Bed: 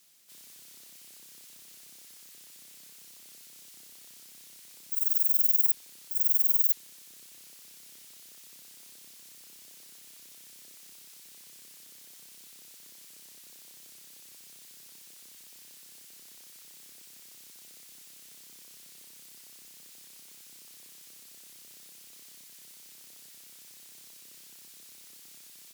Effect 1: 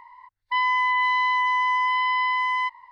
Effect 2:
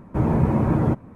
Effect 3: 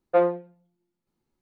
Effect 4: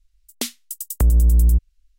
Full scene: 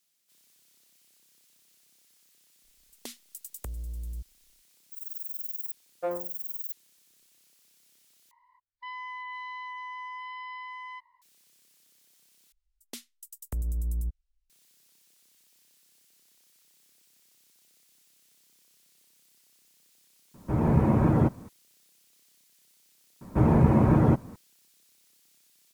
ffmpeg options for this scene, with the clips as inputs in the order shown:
ffmpeg -i bed.wav -i cue0.wav -i cue1.wav -i cue2.wav -i cue3.wav -filter_complex "[4:a]asplit=2[link_01][link_02];[2:a]asplit=2[link_03][link_04];[0:a]volume=-12.5dB[link_05];[link_01]acompressor=threshold=-23dB:ratio=6:attack=3.2:release=140:knee=1:detection=peak[link_06];[link_03]dynaudnorm=framelen=190:gausssize=3:maxgain=6.5dB[link_07];[link_05]asplit=3[link_08][link_09][link_10];[link_08]atrim=end=8.314[link_11];[1:a]atrim=end=2.91,asetpts=PTS-STARTPTS,volume=-17.5dB[link_12];[link_09]atrim=start=11.216:end=12.524[link_13];[link_02]atrim=end=1.98,asetpts=PTS-STARTPTS,volume=-16dB[link_14];[link_10]atrim=start=14.496[link_15];[link_06]atrim=end=1.98,asetpts=PTS-STARTPTS,volume=-11.5dB,afade=type=in:duration=0.004:curve=hsin,afade=type=out:start_time=1.976:duration=0.004:curve=hsin,adelay=2640[link_16];[3:a]atrim=end=1.41,asetpts=PTS-STARTPTS,volume=-11.5dB,afade=type=in:duration=0.004:curve=hsin,afade=type=out:start_time=1.406:duration=0.004:curve=hsin,adelay=259749S[link_17];[link_07]atrim=end=1.15,asetpts=PTS-STARTPTS,volume=-7dB,afade=type=in:duration=0.004:curve=hsin,afade=type=out:start_time=1.146:duration=0.004:curve=hsin,adelay=20340[link_18];[link_04]atrim=end=1.15,asetpts=PTS-STARTPTS,volume=-0.5dB,afade=type=in:duration=0.004:curve=hsin,afade=type=out:start_time=1.146:duration=0.004:curve=hsin,adelay=23210[link_19];[link_11][link_12]acrossfade=duration=0.004:curve1=hsin:curve2=hsin[link_20];[link_20][link_13]acrossfade=duration=0.004:curve1=hsin:curve2=hsin[link_21];[link_21][link_14]acrossfade=duration=0.004:curve1=hsin:curve2=hsin[link_22];[link_22][link_15]acrossfade=duration=0.004:curve1=hsin:curve2=hsin[link_23];[link_23][link_16][link_17][link_18][link_19]amix=inputs=5:normalize=0" out.wav

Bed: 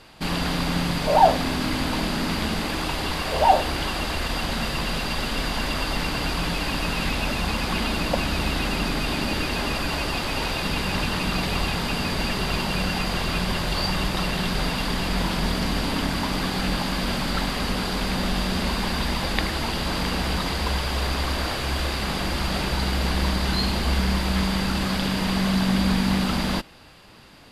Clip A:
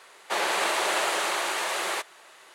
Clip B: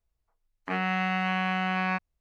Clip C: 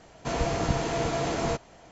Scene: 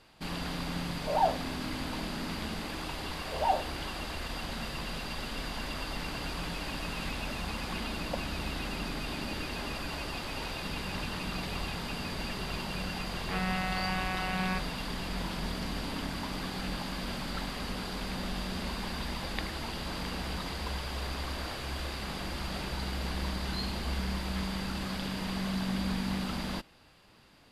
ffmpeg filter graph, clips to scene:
ffmpeg -i bed.wav -i cue0.wav -i cue1.wav -filter_complex "[0:a]volume=-11dB[link_01];[1:a]acompressor=threshold=-36dB:ratio=3:attack=8.7:release=409:knee=1:detection=peak,atrim=end=2.54,asetpts=PTS-STARTPTS,volume=-15.5dB,afade=type=in:duration=0.004:curve=hsin,afade=type=out:start_time=2.536:duration=0.004:curve=hsin,adelay=5780[link_02];[2:a]atrim=end=2.2,asetpts=PTS-STARTPTS,volume=-6dB,afade=type=in:duration=0.004:curve=hsin,afade=type=out:start_time=2.196:duration=0.004:curve=hsin,adelay=12610[link_03];[link_01][link_02][link_03]amix=inputs=3:normalize=0" out.wav

